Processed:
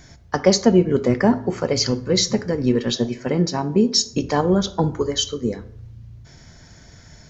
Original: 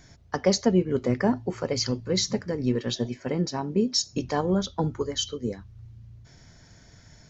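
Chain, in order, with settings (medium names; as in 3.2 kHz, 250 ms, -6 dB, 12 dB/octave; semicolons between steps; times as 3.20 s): plate-style reverb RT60 0.71 s, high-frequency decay 0.55×, DRR 12.5 dB; trim +6.5 dB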